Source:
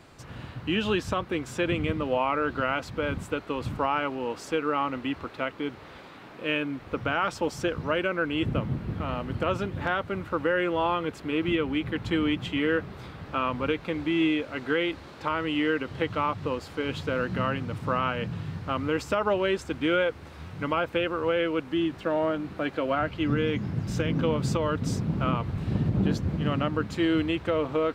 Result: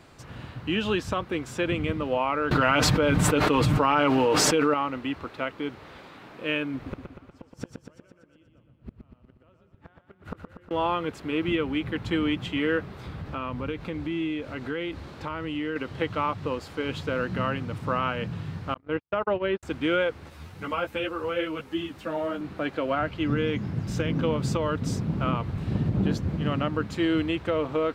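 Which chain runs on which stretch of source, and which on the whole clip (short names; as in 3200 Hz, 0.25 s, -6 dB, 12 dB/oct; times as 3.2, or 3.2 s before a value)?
2.51–4.74 comb 6.6 ms, depth 49% + fast leveller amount 100%
6.74–10.71 low shelf 400 Hz +5.5 dB + flipped gate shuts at -19 dBFS, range -37 dB + feedback echo 0.12 s, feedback 60%, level -6 dB
13.06–15.76 low shelf 210 Hz +9 dB + compressor 2:1, threshold -32 dBFS
18.74–19.63 gate -27 dBFS, range -55 dB + air absorption 230 m
20.3–22.41 high shelf 6800 Hz +11 dB + ensemble effect
whole clip: dry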